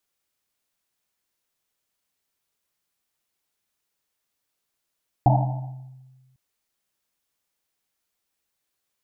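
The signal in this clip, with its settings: Risset drum, pitch 130 Hz, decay 1.50 s, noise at 760 Hz, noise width 260 Hz, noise 35%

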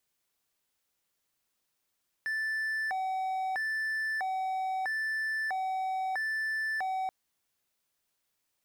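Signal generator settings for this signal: siren hi-lo 757–1760 Hz 0.77/s triangle -27.5 dBFS 4.83 s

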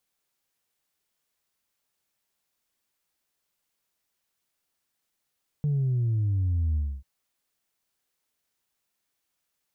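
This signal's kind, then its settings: sub drop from 150 Hz, over 1.39 s, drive 0.5 dB, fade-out 0.27 s, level -22.5 dB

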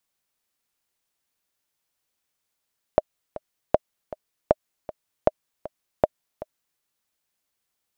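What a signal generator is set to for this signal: metronome 157 bpm, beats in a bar 2, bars 5, 618 Hz, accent 17 dB -2.5 dBFS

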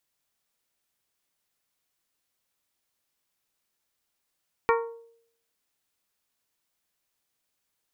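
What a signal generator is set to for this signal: glass hit bell, lowest mode 462 Hz, modes 6, decay 0.67 s, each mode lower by 2 dB, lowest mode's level -19 dB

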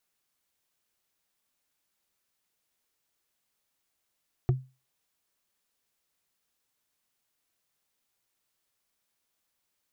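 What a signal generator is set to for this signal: wood hit, lowest mode 130 Hz, decay 0.29 s, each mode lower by 7 dB, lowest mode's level -17 dB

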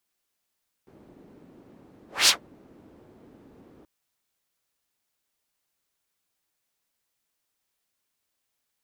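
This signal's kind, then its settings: whoosh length 2.98 s, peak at 1.41, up 0.21 s, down 0.13 s, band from 290 Hz, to 4900 Hz, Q 1.5, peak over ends 37 dB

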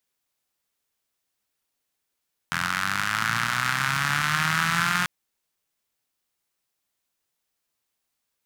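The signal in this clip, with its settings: four-cylinder engine model, changing speed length 2.54 s, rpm 2500, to 5400, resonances 150/1400 Hz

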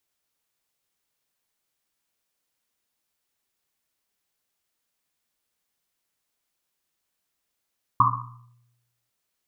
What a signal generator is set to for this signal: Risset drum, pitch 120 Hz, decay 1.05 s, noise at 1100 Hz, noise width 240 Hz, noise 70%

